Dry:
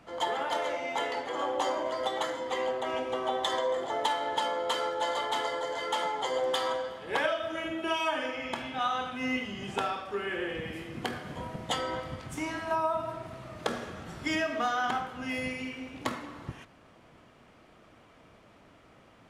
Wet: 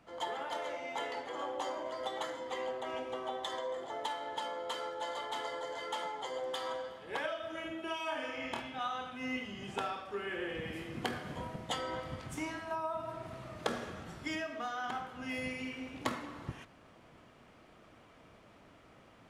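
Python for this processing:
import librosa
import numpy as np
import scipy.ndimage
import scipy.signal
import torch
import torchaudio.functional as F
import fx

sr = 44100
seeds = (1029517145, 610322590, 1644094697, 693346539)

y = fx.rider(x, sr, range_db=5, speed_s=0.5)
y = fx.room_flutter(y, sr, wall_m=4.5, rt60_s=0.31, at=(8.05, 8.61))
y = y * librosa.db_to_amplitude(-7.0)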